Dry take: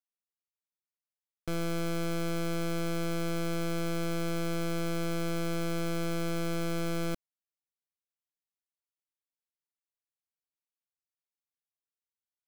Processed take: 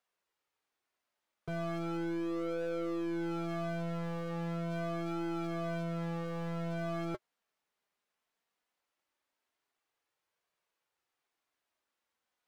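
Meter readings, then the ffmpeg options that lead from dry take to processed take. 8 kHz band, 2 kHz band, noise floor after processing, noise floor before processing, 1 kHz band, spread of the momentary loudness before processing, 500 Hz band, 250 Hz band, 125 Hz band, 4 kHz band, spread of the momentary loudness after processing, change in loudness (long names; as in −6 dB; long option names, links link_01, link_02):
−17.5 dB, −6.0 dB, below −85 dBFS, below −85 dBFS, −2.0 dB, 1 LU, −3.0 dB, −3.0 dB, −4.0 dB, −11.5 dB, 3 LU, −3.5 dB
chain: -filter_complex "[0:a]flanger=delay=1.7:depth=3.3:regen=-50:speed=0.19:shape=triangular,aeval=exprs='0.0299*sin(PI/2*3.16*val(0)/0.0299)':channel_layout=same,asplit=2[link_01][link_02];[link_02]highpass=frequency=720:poles=1,volume=16dB,asoftclip=type=tanh:threshold=-30dB[link_03];[link_01][link_03]amix=inputs=2:normalize=0,lowpass=frequency=1100:poles=1,volume=-6dB"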